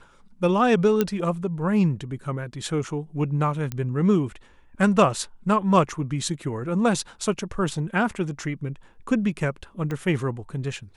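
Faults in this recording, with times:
0:01.01: click −8 dBFS
0:03.72: click −15 dBFS
0:09.91: click −18 dBFS

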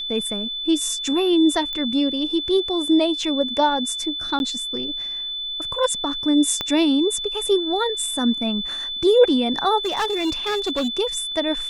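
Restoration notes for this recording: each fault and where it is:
whistle 3,500 Hz −26 dBFS
0:01.73: click −16 dBFS
0:04.39–0:04.40: drop-out 11 ms
0:06.61: click −10 dBFS
0:09.78–0:10.97: clipping −18.5 dBFS

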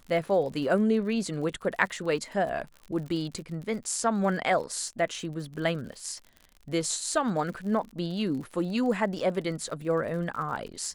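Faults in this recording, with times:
surface crackle 55 per second −37 dBFS

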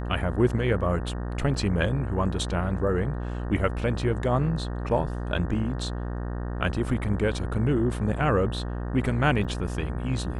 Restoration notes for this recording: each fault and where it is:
mains buzz 60 Hz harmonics 31 −31 dBFS
0:01.54: drop-out 3.5 ms
0:09.44–0:09.45: drop-out 6.7 ms

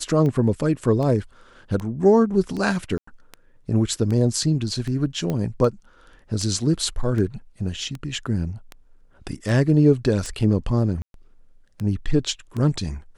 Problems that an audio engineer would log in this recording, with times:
scratch tick 78 rpm −18 dBFS
0:02.98–0:03.07: drop-out 94 ms
0:05.30: click −14 dBFS
0:11.02–0:11.14: drop-out 122 ms

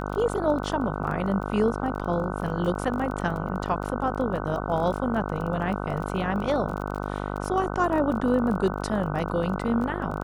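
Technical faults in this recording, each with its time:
mains buzz 50 Hz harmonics 30 −31 dBFS
surface crackle 19 per second −32 dBFS

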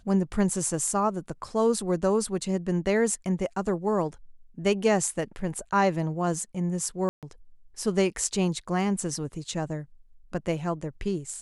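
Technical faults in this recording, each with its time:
0:07.09–0:07.23: drop-out 137 ms

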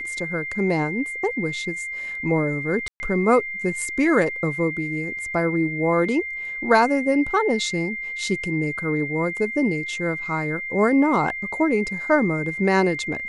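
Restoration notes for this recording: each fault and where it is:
whistle 2,100 Hz −28 dBFS
0:02.88–0:03.00: drop-out 120 ms

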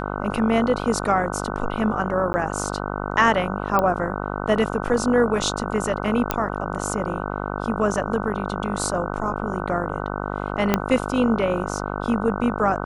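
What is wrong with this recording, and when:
mains buzz 50 Hz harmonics 30 −28 dBFS
0:02.33–0:02.34: drop-out 10 ms
0:03.79: click −8 dBFS
0:06.31: click −5 dBFS
0:10.74: click −3 dBFS

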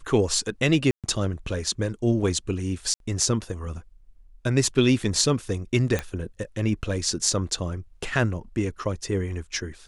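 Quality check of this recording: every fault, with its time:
0:00.91–0:01.04: drop-out 127 ms
0:02.94–0:03.00: drop-out 62 ms
0:05.99: click −12 dBFS

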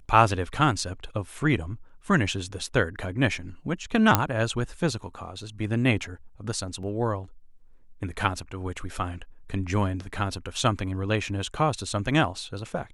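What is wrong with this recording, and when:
0:04.15: click −2 dBFS
0:06.83: drop-out 2.7 ms

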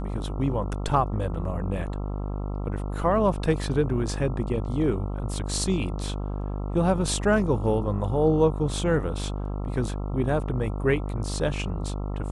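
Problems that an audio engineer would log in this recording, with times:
mains buzz 50 Hz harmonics 27 −30 dBFS

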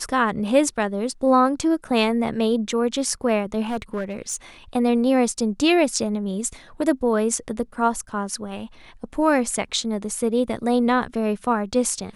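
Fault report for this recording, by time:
0:03.65–0:04.36: clipping −21.5 dBFS

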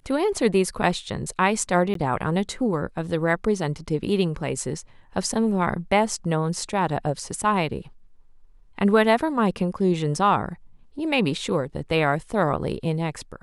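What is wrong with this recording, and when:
0:01.94–0:01.95: drop-out 13 ms

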